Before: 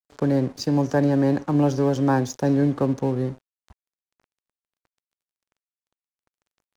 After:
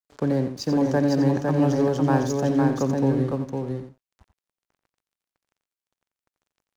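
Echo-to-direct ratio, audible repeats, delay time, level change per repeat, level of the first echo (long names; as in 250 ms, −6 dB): −2.5 dB, 3, 88 ms, repeats not evenly spaced, −10.0 dB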